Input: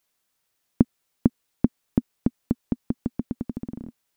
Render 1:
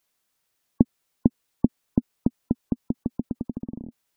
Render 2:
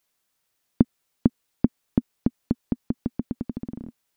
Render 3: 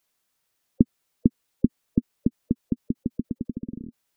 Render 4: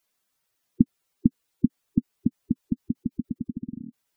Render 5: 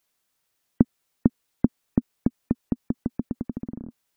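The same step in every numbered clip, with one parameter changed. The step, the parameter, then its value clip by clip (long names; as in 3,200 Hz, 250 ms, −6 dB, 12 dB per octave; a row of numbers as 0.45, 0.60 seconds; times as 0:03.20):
gate on every frequency bin, under each frame's peak: −35, −60, −20, −10, −45 decibels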